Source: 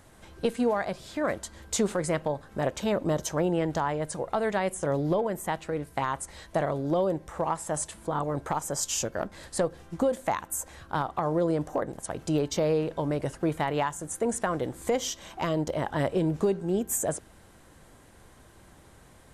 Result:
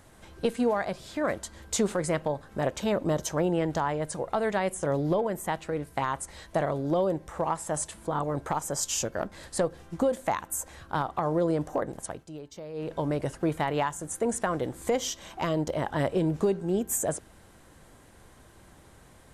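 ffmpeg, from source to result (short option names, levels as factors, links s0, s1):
-filter_complex "[0:a]asplit=3[s0][s1][s2];[s0]atrim=end=12.25,asetpts=PTS-STARTPTS,afade=t=out:st=12.04:d=0.21:silence=0.16788[s3];[s1]atrim=start=12.25:end=12.73,asetpts=PTS-STARTPTS,volume=0.168[s4];[s2]atrim=start=12.73,asetpts=PTS-STARTPTS,afade=t=in:d=0.21:silence=0.16788[s5];[s3][s4][s5]concat=n=3:v=0:a=1"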